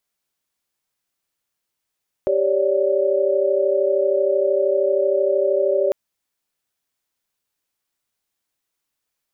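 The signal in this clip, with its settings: chord G4/C#5/D5 sine, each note -20 dBFS 3.65 s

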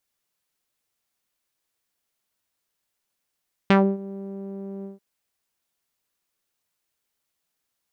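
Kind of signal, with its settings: synth note saw G3 12 dB/octave, low-pass 430 Hz, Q 1.5, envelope 3 oct, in 0.14 s, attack 2 ms, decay 0.27 s, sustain -21 dB, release 0.15 s, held 1.14 s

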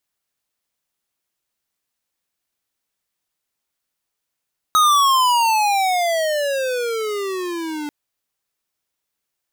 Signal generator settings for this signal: gliding synth tone square, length 3.14 s, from 1.27 kHz, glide -25.5 st, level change -14 dB, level -13 dB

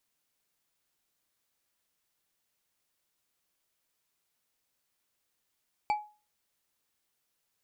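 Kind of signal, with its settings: glass hit bar, lowest mode 841 Hz, decay 0.34 s, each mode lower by 9.5 dB, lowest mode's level -22 dB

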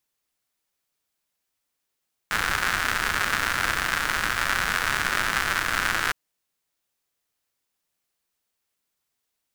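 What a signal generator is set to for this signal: rain from filtered ticks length 3.81 s, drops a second 170, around 1.5 kHz, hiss -9 dB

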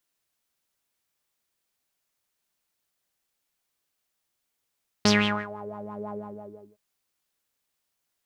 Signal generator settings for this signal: synth patch with filter wobble G#3, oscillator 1 saw, oscillator 2 saw, noise -9.5 dB, filter lowpass, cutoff 370 Hz, Q 5.8, filter envelope 3.5 oct, filter decay 0.56 s, filter sustain 25%, attack 4.1 ms, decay 0.41 s, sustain -20 dB, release 0.59 s, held 1.13 s, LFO 6 Hz, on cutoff 0.6 oct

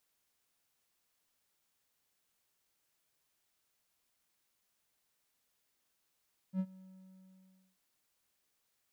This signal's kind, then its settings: ADSR triangle 188 Hz, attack 65 ms, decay 60 ms, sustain -22.5 dB, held 0.20 s, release 1040 ms -27 dBFS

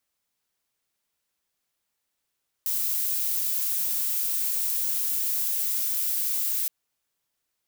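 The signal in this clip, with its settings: noise violet, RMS -26.5 dBFS 4.02 s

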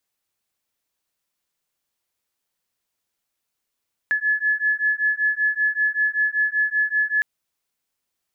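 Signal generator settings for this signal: beating tones 1.71 kHz, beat 5.2 Hz, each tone -21.5 dBFS 3.11 s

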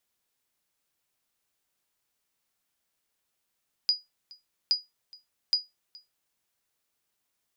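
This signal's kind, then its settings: sonar ping 4.91 kHz, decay 0.19 s, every 0.82 s, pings 3, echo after 0.42 s, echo -24.5 dB -15.5 dBFS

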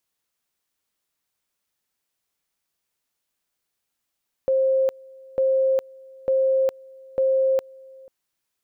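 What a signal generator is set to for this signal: two-level tone 530 Hz -16.5 dBFS, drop 25.5 dB, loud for 0.41 s, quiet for 0.49 s, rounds 4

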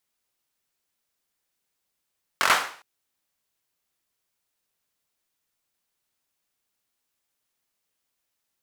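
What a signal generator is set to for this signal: hand clap length 0.41 s, bursts 5, apart 22 ms, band 1.2 kHz, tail 0.48 s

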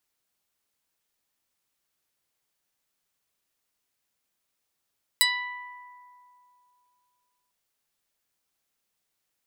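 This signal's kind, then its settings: plucked string B5, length 2.30 s, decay 2.84 s, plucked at 0.15, medium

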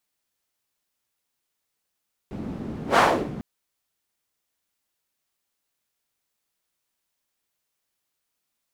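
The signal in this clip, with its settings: whoosh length 1.10 s, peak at 0.66 s, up 0.11 s, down 0.39 s, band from 210 Hz, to 1 kHz, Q 1.6, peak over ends 17 dB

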